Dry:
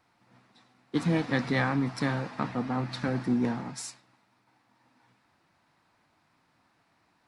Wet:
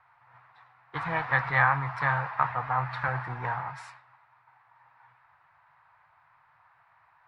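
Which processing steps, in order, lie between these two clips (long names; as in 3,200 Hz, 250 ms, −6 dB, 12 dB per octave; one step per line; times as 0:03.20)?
drawn EQ curve 140 Hz 0 dB, 220 Hz −28 dB, 950 Hz +11 dB, 1,800 Hz +8 dB, 6,400 Hz −19 dB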